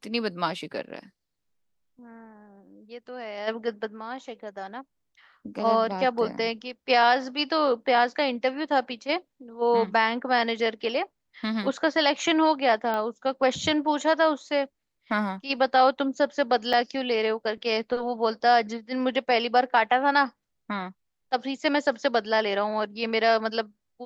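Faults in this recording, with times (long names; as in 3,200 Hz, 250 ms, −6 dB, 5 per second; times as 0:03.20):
0:12.94: click −17 dBFS
0:16.73–0:16.74: drop-out 5.3 ms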